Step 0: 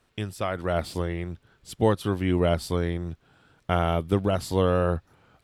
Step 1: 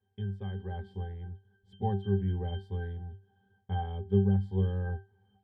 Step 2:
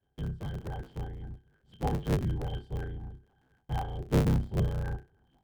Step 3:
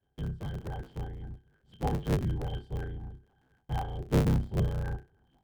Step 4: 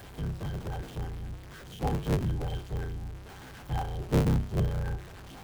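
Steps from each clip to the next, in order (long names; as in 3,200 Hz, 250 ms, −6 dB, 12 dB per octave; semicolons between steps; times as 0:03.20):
resonances in every octave G, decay 0.28 s; level +4 dB
sub-harmonics by changed cycles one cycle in 3, inverted
no processing that can be heard
converter with a step at zero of −40.5 dBFS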